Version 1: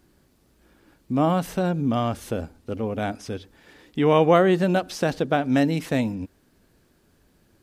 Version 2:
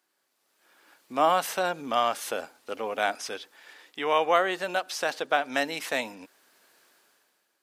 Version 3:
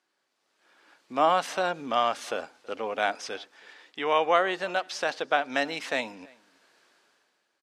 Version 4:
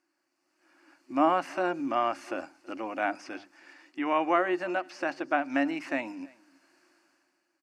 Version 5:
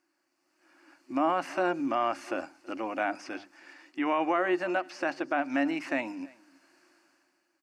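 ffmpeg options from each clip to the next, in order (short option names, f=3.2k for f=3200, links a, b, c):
-af "highpass=800,dynaudnorm=f=120:g=11:m=15dB,volume=-7.5dB"
-filter_complex "[0:a]lowpass=6.2k,asplit=2[a][b];[b]adelay=326.5,volume=-25dB,highshelf=f=4k:g=-7.35[c];[a][c]amix=inputs=2:normalize=0"
-filter_complex "[0:a]bandreject=f=50:t=h:w=6,bandreject=f=100:t=h:w=6,bandreject=f=150:t=h:w=6,bandreject=f=200:t=h:w=6,acrossover=split=3100[a][b];[b]acompressor=threshold=-48dB:ratio=4:attack=1:release=60[c];[a][c]amix=inputs=2:normalize=0,superequalizer=6b=3.55:7b=0.316:13b=0.282,volume=-2.5dB"
-af "alimiter=limit=-18.5dB:level=0:latency=1,volume=1.5dB"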